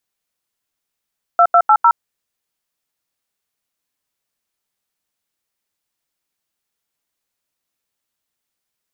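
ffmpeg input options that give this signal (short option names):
-f lavfi -i "aevalsrc='0.335*clip(min(mod(t,0.151),0.067-mod(t,0.151))/0.002,0,1)*(eq(floor(t/0.151),0)*(sin(2*PI*697*mod(t,0.151))+sin(2*PI*1336*mod(t,0.151)))+eq(floor(t/0.151),1)*(sin(2*PI*697*mod(t,0.151))+sin(2*PI*1336*mod(t,0.151)))+eq(floor(t/0.151),2)*(sin(2*PI*852*mod(t,0.151))+sin(2*PI*1336*mod(t,0.151)))+eq(floor(t/0.151),3)*(sin(2*PI*941*mod(t,0.151))+sin(2*PI*1336*mod(t,0.151))))':d=0.604:s=44100"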